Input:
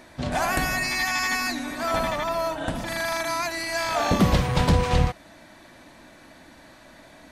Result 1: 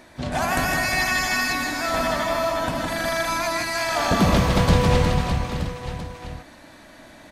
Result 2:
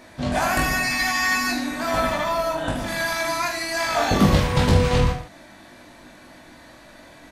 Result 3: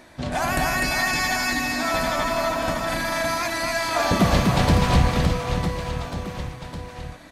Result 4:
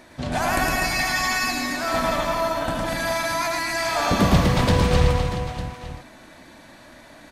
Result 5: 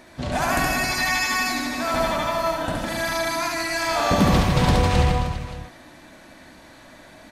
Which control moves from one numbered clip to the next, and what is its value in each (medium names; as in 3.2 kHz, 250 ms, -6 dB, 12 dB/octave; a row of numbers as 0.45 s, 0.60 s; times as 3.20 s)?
reverse bouncing-ball echo, first gap: 160 ms, 20 ms, 250 ms, 110 ms, 70 ms